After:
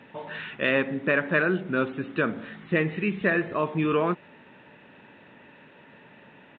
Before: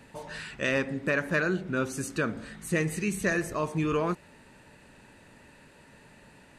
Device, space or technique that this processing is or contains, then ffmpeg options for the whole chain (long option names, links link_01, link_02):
Bluetooth headset: -af "highpass=160,aresample=8000,aresample=44100,volume=4dB" -ar 16000 -c:a sbc -b:a 64k